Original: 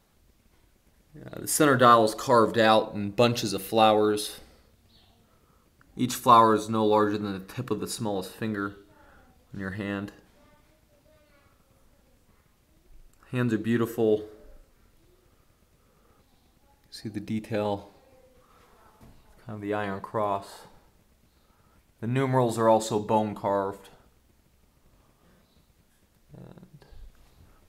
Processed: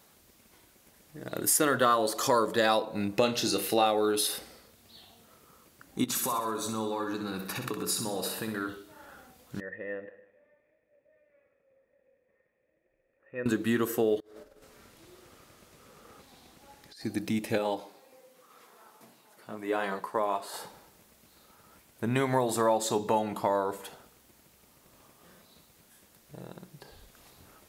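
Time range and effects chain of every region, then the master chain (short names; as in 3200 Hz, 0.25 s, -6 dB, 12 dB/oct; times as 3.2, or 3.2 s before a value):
3.18–3.86 high shelf 10000 Hz -10.5 dB + flutter echo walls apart 5.1 m, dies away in 0.21 s
6.04–8.69 compressor 12:1, threshold -33 dBFS + feedback echo 63 ms, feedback 51%, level -8 dB
9.6–13.46 vocal tract filter e + feedback echo 0.152 s, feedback 36%, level -17.5 dB
14.2–17.01 high shelf 11000 Hz -12 dB + echo 0.345 s -21 dB + negative-ratio compressor -54 dBFS
17.58–20.54 HPF 190 Hz + flange 1.3 Hz, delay 4.9 ms, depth 5.4 ms, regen -51%
whole clip: HPF 270 Hz 6 dB/oct; high shelf 7000 Hz +6.5 dB; compressor 3:1, threshold -31 dBFS; gain +6 dB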